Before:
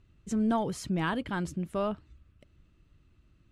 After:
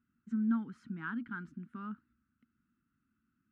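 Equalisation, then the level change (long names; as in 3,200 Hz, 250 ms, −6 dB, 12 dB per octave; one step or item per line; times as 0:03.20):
pair of resonant band-passes 580 Hz, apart 2.6 octaves
0.0 dB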